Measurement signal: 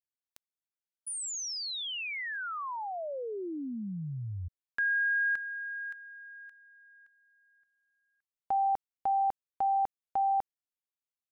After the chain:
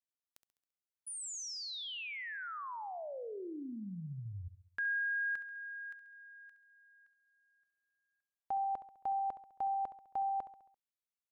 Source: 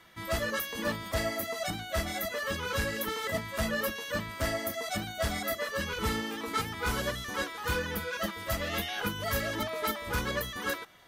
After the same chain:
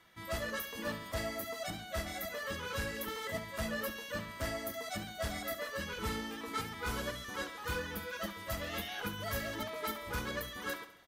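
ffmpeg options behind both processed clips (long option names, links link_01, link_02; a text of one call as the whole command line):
ffmpeg -i in.wav -af "aecho=1:1:68|136|204|272|340:0.224|0.116|0.0605|0.0315|0.0164,volume=-6.5dB" out.wav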